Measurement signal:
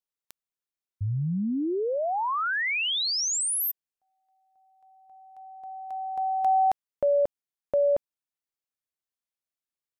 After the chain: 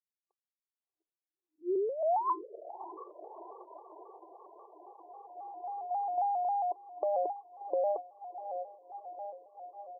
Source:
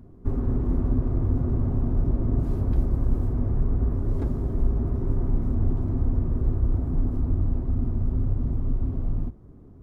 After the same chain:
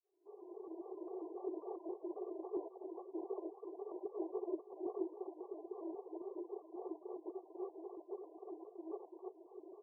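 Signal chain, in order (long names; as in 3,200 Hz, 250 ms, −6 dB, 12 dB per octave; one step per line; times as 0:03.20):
fade in at the beginning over 2.54 s
comb filter 2.7 ms, depth 57%
on a send: feedback delay with all-pass diffusion 668 ms, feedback 71%, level −13 dB
on the sum: brickwall limiter −17 dBFS
in parallel at −0.5 dB: compressor whose output falls as the input rises −25 dBFS, ratio −0.5
on the sum: reverb reduction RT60 1.2 s
brick-wall band-pass 330–1,100 Hz
pitch modulation by a square or saw wave square 3.7 Hz, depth 100 cents
level −8 dB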